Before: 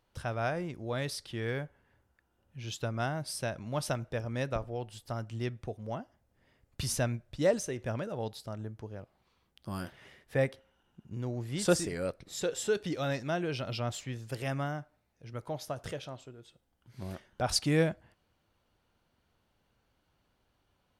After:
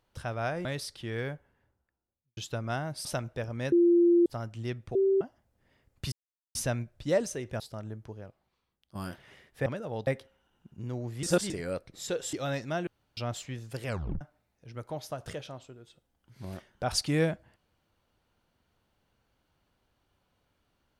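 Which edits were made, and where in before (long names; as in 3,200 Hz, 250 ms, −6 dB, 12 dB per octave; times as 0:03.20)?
0:00.65–0:00.95: remove
0:01.54–0:02.67: fade out and dull
0:03.35–0:03.81: remove
0:04.48–0:05.02: beep over 345 Hz −18 dBFS
0:05.71–0:05.97: beep over 388 Hz −21 dBFS
0:06.88: splice in silence 0.43 s
0:07.93–0:08.34: move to 0:10.40
0:08.88–0:09.69: fade out quadratic, to −11 dB
0:11.56–0:11.83: reverse
0:12.66–0:12.91: remove
0:13.45–0:13.75: fill with room tone
0:14.44: tape stop 0.35 s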